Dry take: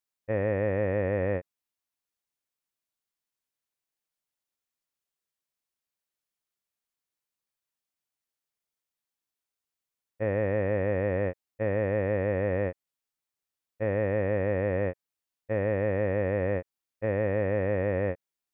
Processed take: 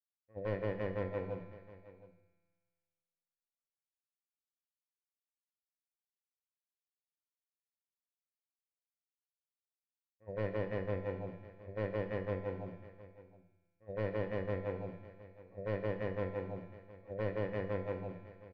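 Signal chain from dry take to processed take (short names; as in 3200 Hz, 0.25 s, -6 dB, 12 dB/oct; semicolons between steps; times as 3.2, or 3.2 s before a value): Wiener smoothing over 9 samples; gate -25 dBFS, range -12 dB; spectral noise reduction 30 dB; dynamic EQ 650 Hz, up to -5 dB, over -48 dBFS, Q 2.8; in parallel at -2.5 dB: compressor, threshold -44 dBFS, peak gain reduction 14 dB; on the sum: limiter -23.5 dBFS, peak gain reduction 4 dB; one-sided clip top -41.5 dBFS, bottom -25 dBFS; air absorption 230 m; resonator 170 Hz, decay 2 s, mix 80%; echo 0.717 s -18 dB; on a send at -10 dB: reverb RT60 0.70 s, pre-delay 18 ms; on the sum: gain +15 dB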